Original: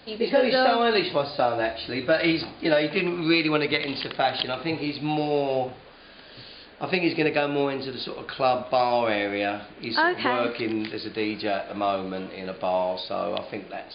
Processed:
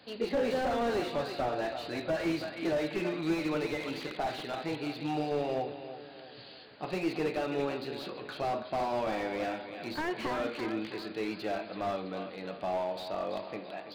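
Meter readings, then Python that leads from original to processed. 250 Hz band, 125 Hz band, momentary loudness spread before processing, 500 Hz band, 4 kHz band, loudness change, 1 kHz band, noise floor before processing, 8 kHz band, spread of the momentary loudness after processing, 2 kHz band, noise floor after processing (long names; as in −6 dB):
−7.0 dB, −7.0 dB, 12 LU, −8.0 dB, −12.5 dB, −9.0 dB, −9.0 dB, −47 dBFS, can't be measured, 9 LU, −12.0 dB, −48 dBFS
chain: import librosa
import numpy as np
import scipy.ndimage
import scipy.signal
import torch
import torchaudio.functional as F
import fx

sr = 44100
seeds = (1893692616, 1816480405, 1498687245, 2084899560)

y = scipy.signal.sosfilt(scipy.signal.butter(2, 97.0, 'highpass', fs=sr, output='sos'), x)
y = fx.echo_feedback(y, sr, ms=330, feedback_pct=45, wet_db=-12.0)
y = fx.slew_limit(y, sr, full_power_hz=64.0)
y = F.gain(torch.from_numpy(y), -7.0).numpy()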